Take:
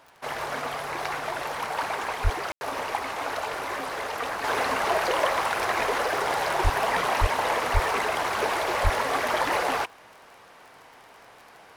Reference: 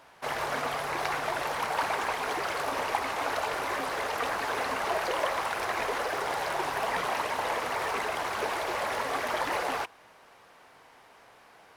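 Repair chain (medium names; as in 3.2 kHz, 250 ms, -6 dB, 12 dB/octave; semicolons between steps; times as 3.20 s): de-click; de-plosive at 2.23/6.63/7.20/7.73/8.83 s; room tone fill 2.52–2.61 s; gain correction -5 dB, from 4.44 s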